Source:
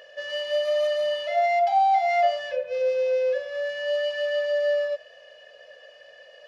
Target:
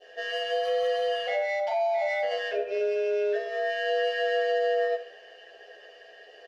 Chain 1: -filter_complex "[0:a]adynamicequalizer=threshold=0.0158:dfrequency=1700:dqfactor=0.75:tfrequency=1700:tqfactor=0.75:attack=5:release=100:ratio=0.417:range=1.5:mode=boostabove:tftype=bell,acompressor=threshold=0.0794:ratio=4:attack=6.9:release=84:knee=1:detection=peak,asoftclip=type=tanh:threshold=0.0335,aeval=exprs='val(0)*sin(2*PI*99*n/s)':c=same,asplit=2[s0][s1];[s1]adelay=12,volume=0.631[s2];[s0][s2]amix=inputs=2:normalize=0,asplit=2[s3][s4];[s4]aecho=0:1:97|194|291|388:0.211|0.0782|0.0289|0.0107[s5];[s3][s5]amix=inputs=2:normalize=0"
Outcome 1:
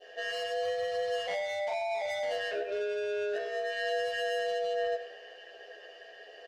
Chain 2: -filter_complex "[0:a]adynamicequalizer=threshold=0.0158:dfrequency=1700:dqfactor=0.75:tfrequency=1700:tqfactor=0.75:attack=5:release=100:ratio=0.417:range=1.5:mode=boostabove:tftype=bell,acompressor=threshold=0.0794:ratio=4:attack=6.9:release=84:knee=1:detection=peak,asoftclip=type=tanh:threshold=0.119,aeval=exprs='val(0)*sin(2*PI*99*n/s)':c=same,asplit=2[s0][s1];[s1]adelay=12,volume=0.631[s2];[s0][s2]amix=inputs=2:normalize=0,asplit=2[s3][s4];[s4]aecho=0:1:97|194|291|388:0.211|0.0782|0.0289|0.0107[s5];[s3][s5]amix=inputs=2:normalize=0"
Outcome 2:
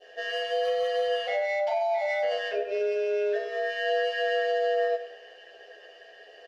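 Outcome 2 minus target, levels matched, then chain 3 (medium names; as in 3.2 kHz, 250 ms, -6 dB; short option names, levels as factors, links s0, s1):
echo 29 ms late
-filter_complex "[0:a]adynamicequalizer=threshold=0.0158:dfrequency=1700:dqfactor=0.75:tfrequency=1700:tqfactor=0.75:attack=5:release=100:ratio=0.417:range=1.5:mode=boostabove:tftype=bell,acompressor=threshold=0.0794:ratio=4:attack=6.9:release=84:knee=1:detection=peak,asoftclip=type=tanh:threshold=0.119,aeval=exprs='val(0)*sin(2*PI*99*n/s)':c=same,asplit=2[s0][s1];[s1]adelay=12,volume=0.631[s2];[s0][s2]amix=inputs=2:normalize=0,asplit=2[s3][s4];[s4]aecho=0:1:68|136|204|272:0.211|0.0782|0.0289|0.0107[s5];[s3][s5]amix=inputs=2:normalize=0"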